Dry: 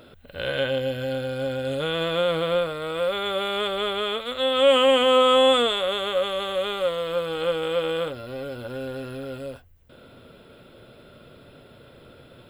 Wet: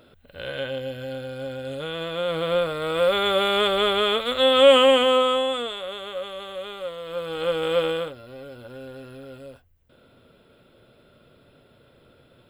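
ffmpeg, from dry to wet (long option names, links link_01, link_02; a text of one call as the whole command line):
ffmpeg -i in.wav -af "volume=16dB,afade=type=in:start_time=2.16:duration=0.97:silence=0.316228,afade=type=out:start_time=4.5:duration=0.97:silence=0.223872,afade=type=in:start_time=7.02:duration=0.78:silence=0.281838,afade=type=out:start_time=7.8:duration=0.35:silence=0.316228" out.wav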